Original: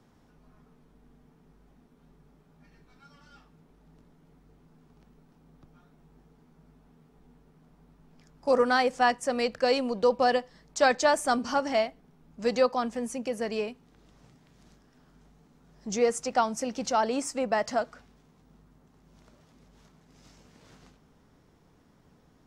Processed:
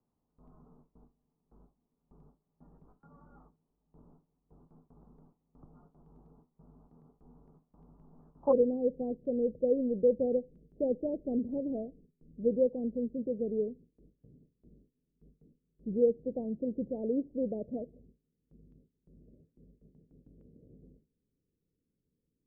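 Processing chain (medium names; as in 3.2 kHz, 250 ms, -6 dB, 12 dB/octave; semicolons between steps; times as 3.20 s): steep low-pass 1.2 kHz 48 dB/octave, from 8.51 s 510 Hz; gate with hold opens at -50 dBFS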